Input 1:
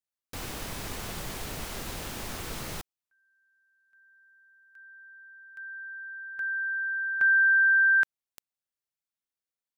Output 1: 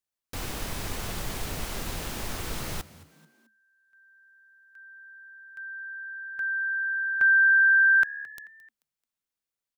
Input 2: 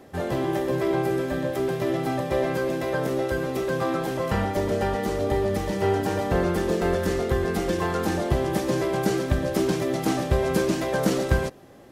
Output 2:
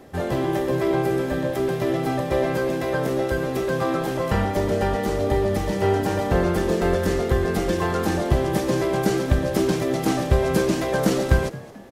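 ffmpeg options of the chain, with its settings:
ffmpeg -i in.wav -filter_complex "[0:a]lowshelf=frequency=62:gain=5.5,asplit=4[link_01][link_02][link_03][link_04];[link_02]adelay=218,afreqshift=71,volume=-19dB[link_05];[link_03]adelay=436,afreqshift=142,volume=-26.5dB[link_06];[link_04]adelay=654,afreqshift=213,volume=-34.1dB[link_07];[link_01][link_05][link_06][link_07]amix=inputs=4:normalize=0,volume=2dB" out.wav

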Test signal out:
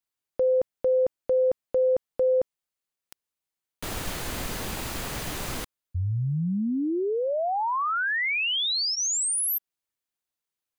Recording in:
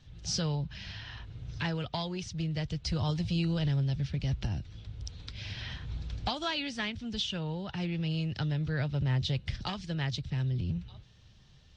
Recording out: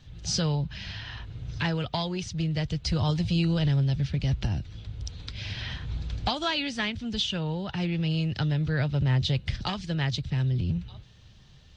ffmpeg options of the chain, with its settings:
ffmpeg -i in.wav -af "bandreject=frequency=5500:width=22,volume=5dB" out.wav

